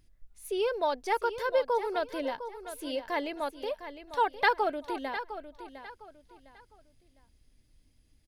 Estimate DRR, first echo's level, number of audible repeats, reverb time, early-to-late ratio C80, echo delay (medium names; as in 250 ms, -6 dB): no reverb, -11.5 dB, 3, no reverb, no reverb, 706 ms